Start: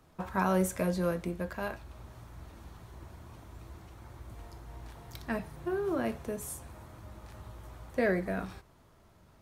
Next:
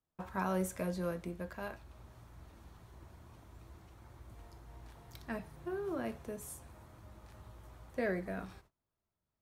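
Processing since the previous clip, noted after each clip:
noise gate −54 dBFS, range −23 dB
level −6.5 dB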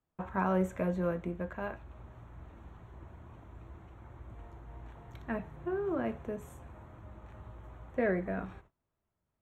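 moving average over 9 samples
level +5 dB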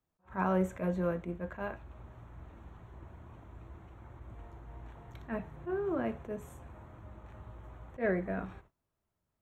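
level that may rise only so fast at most 260 dB per second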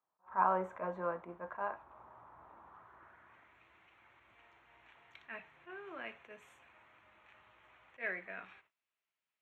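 band-pass filter sweep 1,000 Hz → 2,500 Hz, 0:02.61–0:03.65
level +6.5 dB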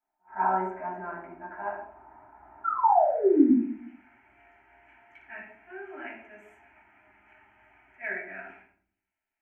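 sound drawn into the spectrogram fall, 0:02.64–0:03.51, 220–1,400 Hz −27 dBFS
phaser with its sweep stopped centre 760 Hz, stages 8
convolution reverb RT60 0.50 s, pre-delay 5 ms, DRR −7.5 dB
level −3 dB

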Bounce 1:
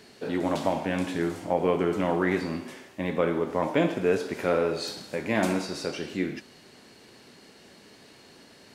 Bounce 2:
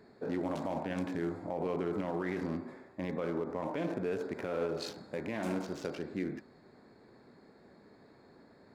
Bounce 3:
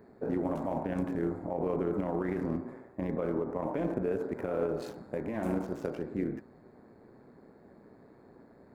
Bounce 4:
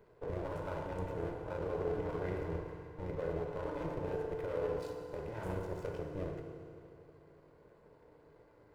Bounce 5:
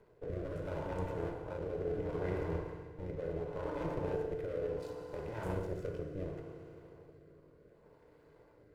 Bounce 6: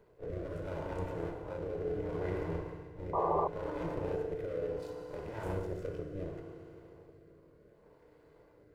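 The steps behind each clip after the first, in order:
adaptive Wiener filter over 15 samples; brickwall limiter −21.5 dBFS, peak gain reduction 10.5 dB; level −4 dB
parametric band 4,300 Hz −14.5 dB 2.1 octaves; amplitude modulation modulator 120 Hz, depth 35%; level +6 dB
lower of the sound and its delayed copy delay 2 ms; feedback delay network reverb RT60 2.6 s, high-frequency decay 0.9×, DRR 3.5 dB; level −6 dB
rotating-speaker cabinet horn 0.7 Hz; level +2 dB
on a send: backwards echo 30 ms −10 dB; on the sum: sound drawn into the spectrogram noise, 0:03.13–0:03.48, 340–1,200 Hz −31 dBFS

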